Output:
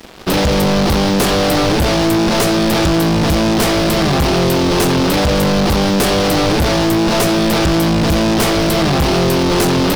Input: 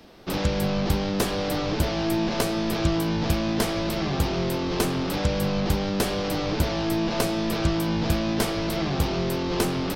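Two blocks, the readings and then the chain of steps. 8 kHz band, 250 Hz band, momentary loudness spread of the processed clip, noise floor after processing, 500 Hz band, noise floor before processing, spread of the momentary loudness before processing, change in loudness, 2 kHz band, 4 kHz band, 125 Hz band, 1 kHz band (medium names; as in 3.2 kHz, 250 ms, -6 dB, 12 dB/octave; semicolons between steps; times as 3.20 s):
+13.0 dB, +11.5 dB, 0 LU, -14 dBFS, +12.0 dB, -28 dBFS, 2 LU, +11.5 dB, +12.5 dB, +13.0 dB, +10.0 dB, +13.0 dB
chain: waveshaping leveller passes 5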